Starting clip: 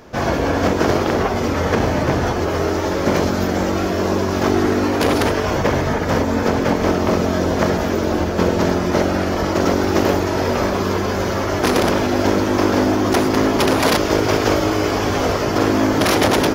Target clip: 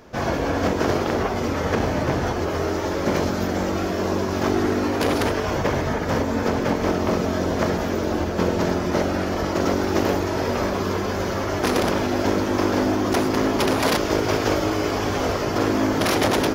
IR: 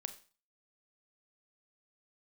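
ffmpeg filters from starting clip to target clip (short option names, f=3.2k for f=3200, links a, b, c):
-af "flanger=delay=2.5:depth=6.3:regen=-86:speed=1.7:shape=triangular"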